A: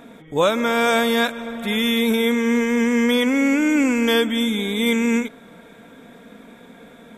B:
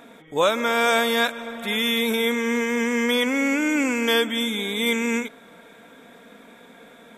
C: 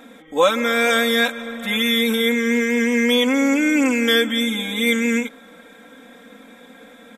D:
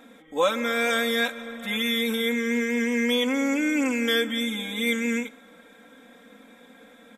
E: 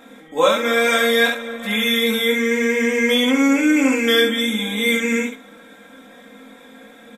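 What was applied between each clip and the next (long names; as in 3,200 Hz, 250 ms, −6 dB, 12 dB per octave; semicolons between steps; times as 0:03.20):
low-shelf EQ 270 Hz −11 dB
comb filter 3.8 ms, depth 92%
convolution reverb, pre-delay 3 ms, DRR 19 dB; level −6.5 dB
ambience of single reflections 19 ms −3 dB, 69 ms −3.5 dB; level +4.5 dB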